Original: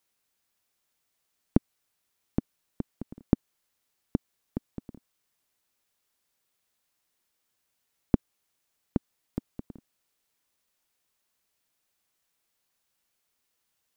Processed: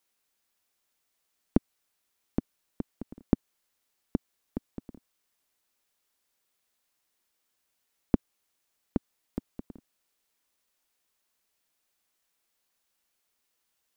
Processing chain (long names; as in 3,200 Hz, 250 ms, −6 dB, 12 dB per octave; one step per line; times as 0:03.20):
parametric band 120 Hz −8.5 dB 0.74 octaves